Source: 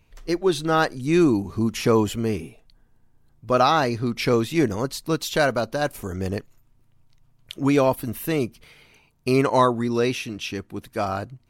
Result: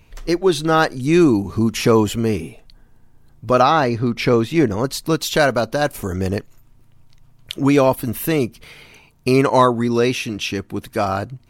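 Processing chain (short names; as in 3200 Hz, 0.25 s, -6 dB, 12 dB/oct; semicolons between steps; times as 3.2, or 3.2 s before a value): 3.62–4.84 high shelf 4500 Hz -9.5 dB; in parallel at -0.5 dB: compressor, threshold -34 dBFS, peak gain reduction 19.5 dB; on the sum: hard clip -6 dBFS, distortion -47 dB; gain +3.5 dB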